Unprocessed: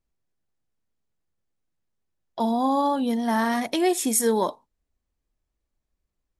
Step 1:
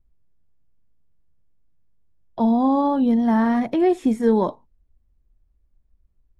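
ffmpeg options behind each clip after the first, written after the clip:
-filter_complex "[0:a]aemphasis=mode=reproduction:type=riaa,acrossover=split=2700[a][b];[b]acompressor=threshold=-47dB:ratio=4:attack=1:release=60[c];[a][c]amix=inputs=2:normalize=0"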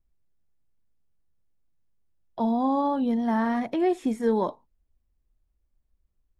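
-af "lowshelf=f=300:g=-6.5,volume=-3dB"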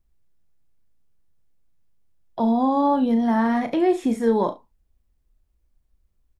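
-filter_complex "[0:a]asplit=2[a][b];[b]alimiter=limit=-21dB:level=0:latency=1,volume=-2dB[c];[a][c]amix=inputs=2:normalize=0,aecho=1:1:35|68:0.316|0.133"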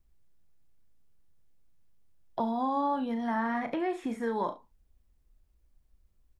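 -filter_complex "[0:a]acrossover=split=1000|2200[a][b][c];[a]acompressor=threshold=-33dB:ratio=4[d];[b]acompressor=threshold=-31dB:ratio=4[e];[c]acompressor=threshold=-59dB:ratio=4[f];[d][e][f]amix=inputs=3:normalize=0"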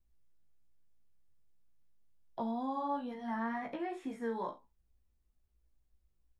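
-af "flanger=delay=15:depth=2.7:speed=2.2,volume=-4.5dB"

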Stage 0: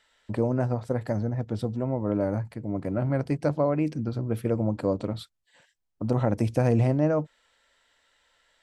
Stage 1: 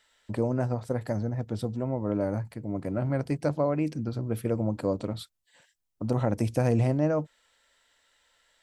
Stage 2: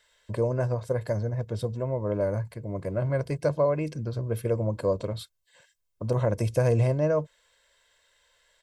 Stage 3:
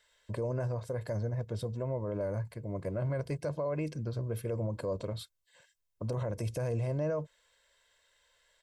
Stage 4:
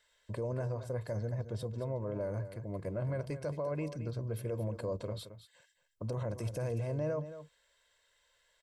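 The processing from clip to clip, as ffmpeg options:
-af "highshelf=f=5.8k:g=7.5,volume=-2dB"
-af "aecho=1:1:1.9:0.63"
-af "alimiter=limit=-21.5dB:level=0:latency=1:release=42,volume=-4dB"
-af "aecho=1:1:221:0.251,volume=-2.5dB"

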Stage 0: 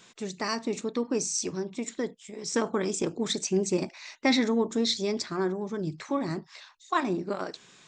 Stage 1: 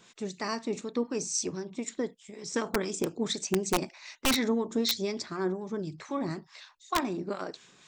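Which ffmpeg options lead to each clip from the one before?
-filter_complex "[0:a]acrossover=split=1200[a][b];[a]aeval=exprs='val(0)*(1-0.5/2+0.5/2*cos(2*PI*4*n/s))':c=same[c];[b]aeval=exprs='val(0)*(1-0.5/2-0.5/2*cos(2*PI*4*n/s))':c=same[d];[c][d]amix=inputs=2:normalize=0,aeval=exprs='(mod(7.94*val(0)+1,2)-1)/7.94':c=same"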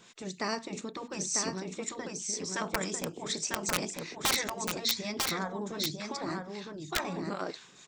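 -af "afftfilt=real='re*lt(hypot(re,im),0.178)':imag='im*lt(hypot(re,im),0.178)':win_size=1024:overlap=0.75,aecho=1:1:947:0.631,volume=1dB"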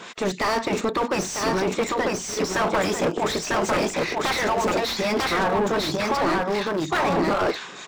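-filter_complex "[0:a]asplit=2[a][b];[b]aeval=exprs='val(0)*gte(abs(val(0)),0.0126)':c=same,volume=-4dB[c];[a][c]amix=inputs=2:normalize=0,asplit=2[d][e];[e]highpass=f=720:p=1,volume=36dB,asoftclip=type=tanh:threshold=-7dB[f];[d][f]amix=inputs=2:normalize=0,lowpass=f=1.3k:p=1,volume=-6dB,volume=-4.5dB"

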